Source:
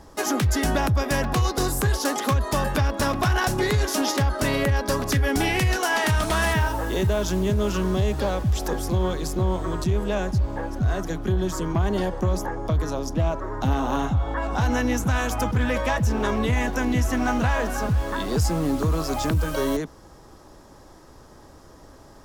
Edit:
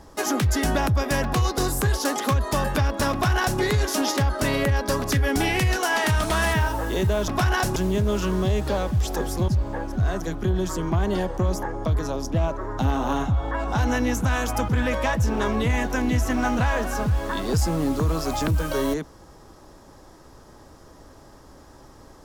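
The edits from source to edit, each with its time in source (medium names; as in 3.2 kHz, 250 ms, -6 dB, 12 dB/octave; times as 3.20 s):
3.12–3.60 s: copy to 7.28 s
9.00–10.31 s: delete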